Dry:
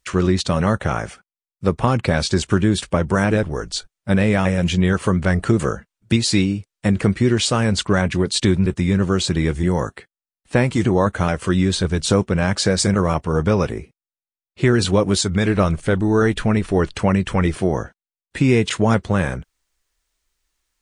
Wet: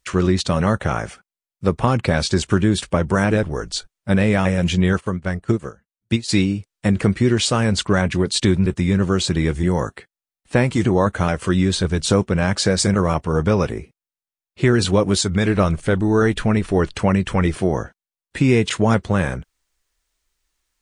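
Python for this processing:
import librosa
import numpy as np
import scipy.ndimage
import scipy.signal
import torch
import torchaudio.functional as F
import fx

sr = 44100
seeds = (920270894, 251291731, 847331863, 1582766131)

y = fx.upward_expand(x, sr, threshold_db=-26.0, expansion=2.5, at=(4.99, 6.28), fade=0.02)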